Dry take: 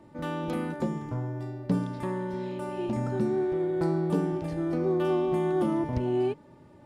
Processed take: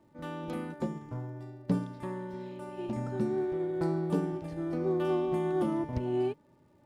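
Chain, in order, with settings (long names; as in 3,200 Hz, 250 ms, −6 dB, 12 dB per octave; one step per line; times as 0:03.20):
surface crackle 180 per second −56 dBFS
expander for the loud parts 1.5 to 1, over −39 dBFS
level −1.5 dB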